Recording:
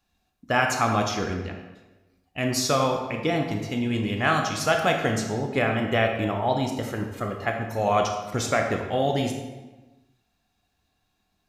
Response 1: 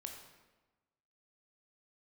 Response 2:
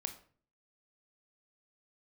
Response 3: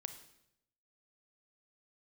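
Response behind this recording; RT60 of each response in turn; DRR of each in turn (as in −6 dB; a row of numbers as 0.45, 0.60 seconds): 1; 1.2, 0.45, 0.80 seconds; 2.5, 7.0, 8.5 decibels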